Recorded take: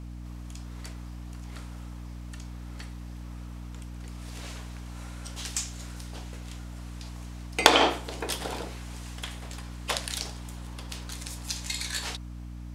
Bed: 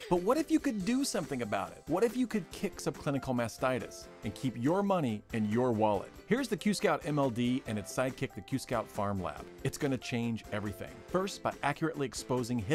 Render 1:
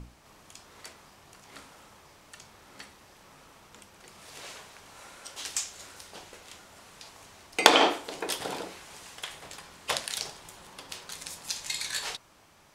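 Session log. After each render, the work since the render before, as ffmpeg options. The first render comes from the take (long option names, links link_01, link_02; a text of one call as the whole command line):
ffmpeg -i in.wav -af "bandreject=frequency=60:width_type=h:width=6,bandreject=frequency=120:width_type=h:width=6,bandreject=frequency=180:width_type=h:width=6,bandreject=frequency=240:width_type=h:width=6,bandreject=frequency=300:width_type=h:width=6" out.wav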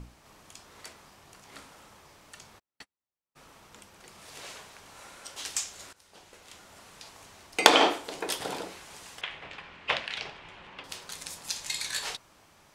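ffmpeg -i in.wav -filter_complex "[0:a]asplit=3[link_01][link_02][link_03];[link_01]afade=type=out:start_time=2.58:duration=0.02[link_04];[link_02]agate=range=-46dB:threshold=-45dB:ratio=16:release=100:detection=peak,afade=type=in:start_time=2.58:duration=0.02,afade=type=out:start_time=3.35:duration=0.02[link_05];[link_03]afade=type=in:start_time=3.35:duration=0.02[link_06];[link_04][link_05][link_06]amix=inputs=3:normalize=0,asettb=1/sr,asplit=3[link_07][link_08][link_09];[link_07]atrim=end=9.214[link_10];[link_08]atrim=start=9.21:end=10.84,asetpts=PTS-STARTPTS,afade=type=in:duration=0.004:curve=qsin,afade=type=out:start_time=1.626:duration=0.004:curve=qsin,lowpass=frequency=2600:width_type=q:width=2.1[link_11];[link_09]atrim=start=10.836[link_12];[link_10][link_11]acrossfade=duration=0.004:curve1=hsin:curve2=qsin[link_13];[link_13][link_12]acrossfade=duration=0.004:curve1=qsin:curve2=hsin,asplit=2[link_14][link_15];[link_14]atrim=end=5.93,asetpts=PTS-STARTPTS,afade=type=out:start_time=5.926:duration=0.004:curve=hsin:silence=0.125893[link_16];[link_15]atrim=start=5.93,asetpts=PTS-STARTPTS,afade=type=in:duration=0.78:silence=0.125893[link_17];[link_16][link_17]concat=n=2:v=0:a=1" out.wav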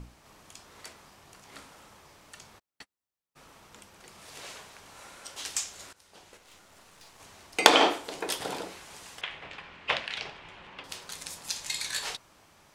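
ffmpeg -i in.wav -filter_complex "[0:a]asettb=1/sr,asplit=3[link_01][link_02][link_03];[link_01]atrim=end=6.374[link_04];[link_02]atrim=start=6.37:end=7.2,asetpts=PTS-STARTPTS,afade=type=in:duration=0.004:curve=qsin,afade=type=out:start_time=0.826:duration=0.004:curve=qsin,aeval=exprs='(tanh(224*val(0)+0.75)-tanh(0.75))/224':channel_layout=same[link_05];[link_03]atrim=start=7.196[link_06];[link_04][link_05]acrossfade=duration=0.004:curve1=hsin:curve2=qsin[link_07];[link_07][link_06]acrossfade=duration=0.004:curve1=qsin:curve2=hsin" out.wav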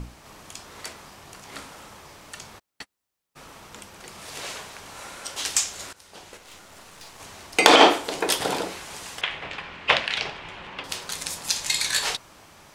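ffmpeg -i in.wav -af "alimiter=level_in=9dB:limit=-1dB:release=50:level=0:latency=1" out.wav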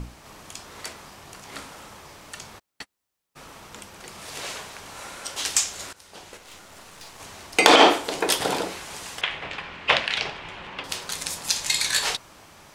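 ffmpeg -i in.wav -af "volume=1dB,alimiter=limit=-2dB:level=0:latency=1" out.wav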